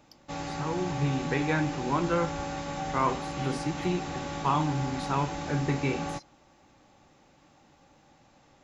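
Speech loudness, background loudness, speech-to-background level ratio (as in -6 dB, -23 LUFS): -30.5 LUFS, -35.5 LUFS, 5.0 dB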